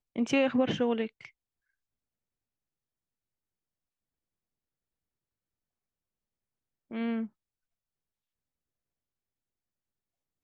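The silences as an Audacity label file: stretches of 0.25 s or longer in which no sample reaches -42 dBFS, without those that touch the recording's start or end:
1.250000	6.910000	silence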